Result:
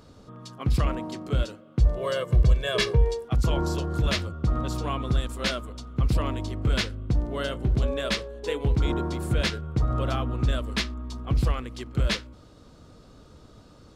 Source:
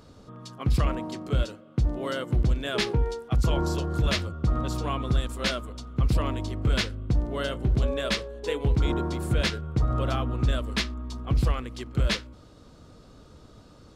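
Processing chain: 1.8–3.25 comb 1.8 ms, depth 85%

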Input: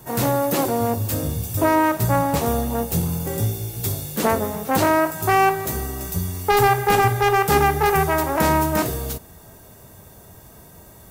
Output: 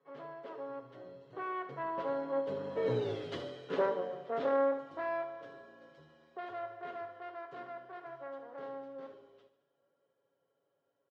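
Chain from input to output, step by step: Doppler pass-by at 3.09, 53 m/s, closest 8.9 m; speaker cabinet 350–3100 Hz, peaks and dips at 500 Hz +9 dB, 800 Hz -6 dB, 2400 Hz -8 dB; comb 7.2 ms, depth 60%; feedback echo 73 ms, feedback 56%, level -12 dB

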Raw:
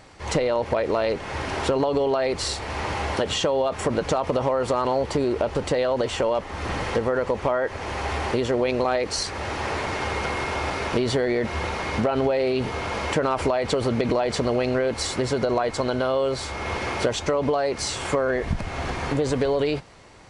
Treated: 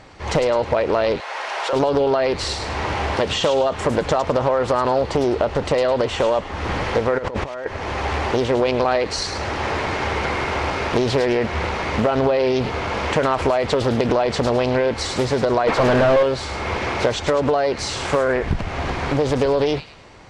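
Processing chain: 1.2–1.73 HPF 580 Hz 24 dB/oct; 7.18–7.66 negative-ratio compressor -32 dBFS, ratio -1; 15.67–16.23 overdrive pedal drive 32 dB, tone 1100 Hz, clips at -12 dBFS; air absorption 62 m; on a send: thin delay 0.105 s, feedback 36%, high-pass 2600 Hz, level -6.5 dB; on the sum: Doppler distortion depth 0.77 ms; gain +4.5 dB

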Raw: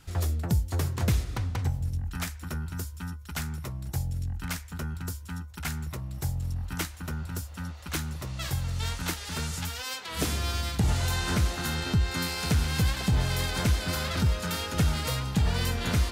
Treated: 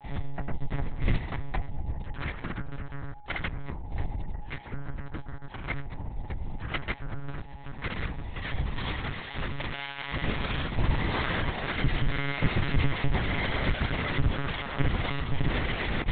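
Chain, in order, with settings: thirty-one-band EQ 160 Hz +6 dB, 800 Hz +5 dB, 2000 Hz +9 dB; grains, grains 20/s; whine 830 Hz -50 dBFS; monotone LPC vocoder at 8 kHz 140 Hz; Doppler distortion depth 0.13 ms

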